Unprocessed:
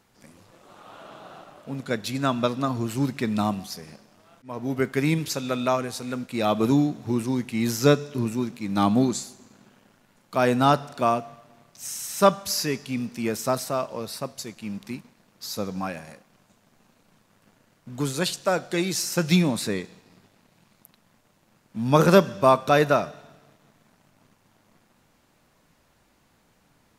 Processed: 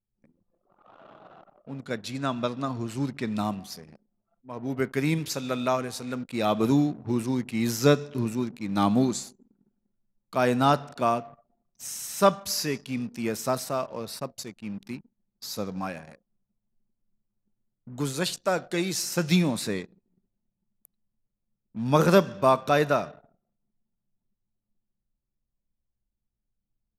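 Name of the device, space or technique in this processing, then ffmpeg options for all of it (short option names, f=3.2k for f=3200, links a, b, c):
voice memo with heavy noise removal: -filter_complex "[0:a]asettb=1/sr,asplit=3[a][b][c];[a]atrim=end=1.964[d];[b]atrim=start=1.96:end=3.36,asetpts=PTS-STARTPTS,afade=t=in:d=0.004:c=qsin,afade=t=out:st=1.396:d=0.004:c=qsin,lowpass=9.8k[e];[c]atrim=start=3.356[f];[d][e]acrossfade=d=0.004:c1=hsin:c2=qsin[g];[g][f]acrossfade=d=0.004:c1=qsin:c2=hsin,anlmdn=0.1,dynaudnorm=f=920:g=11:m=11.5dB,volume=-5dB"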